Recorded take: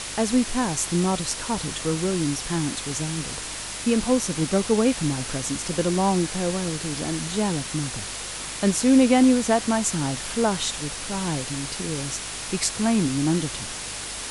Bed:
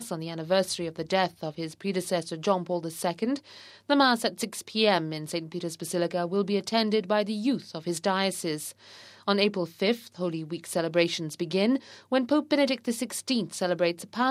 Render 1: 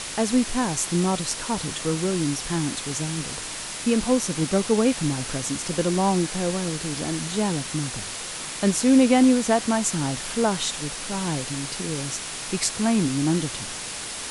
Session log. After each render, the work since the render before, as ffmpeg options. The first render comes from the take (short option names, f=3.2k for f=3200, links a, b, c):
-af "bandreject=f=50:t=h:w=4,bandreject=f=100:t=h:w=4"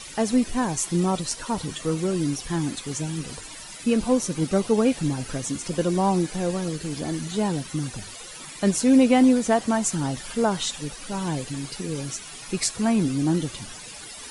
-af "afftdn=nr=14:nf=-34"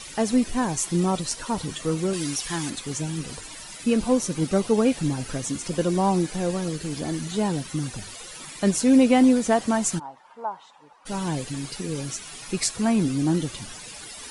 -filter_complex "[0:a]asettb=1/sr,asplit=3[a][b][c];[a]atrim=end=2.134[d];[b]atrim=start=2.13:end=2.7,asetpts=PTS-STARTPTS,afade=t=in:d=0.004:c=qsin,afade=t=out:st=0.566:d=0.004:c=qsin,tiltshelf=f=760:g=-6[e];[c]atrim=start=2.696[f];[d][e]acrossfade=d=0.004:c1=hsin:c2=qsin[g];[g][f]acrossfade=d=0.004:c1=qsin:c2=hsin,asplit=3[h][i][j];[h]afade=t=out:st=9.98:d=0.02[k];[i]bandpass=f=910:t=q:w=4.7,afade=t=in:st=9.98:d=0.02,afade=t=out:st=11.05:d=0.02[l];[j]afade=t=in:st=11.05:d=0.02[m];[k][l][m]amix=inputs=3:normalize=0"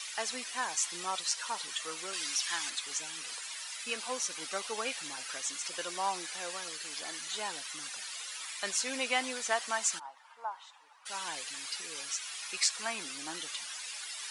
-filter_complex "[0:a]highpass=1.3k,acrossover=split=7800[a][b];[b]acompressor=threshold=-48dB:ratio=4:attack=1:release=60[c];[a][c]amix=inputs=2:normalize=0"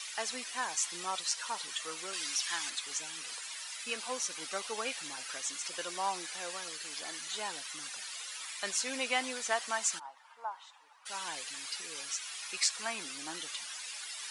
-af "volume=-1dB"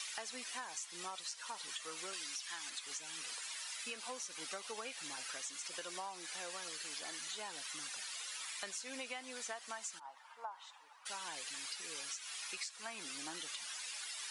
-af "acompressor=threshold=-41dB:ratio=12"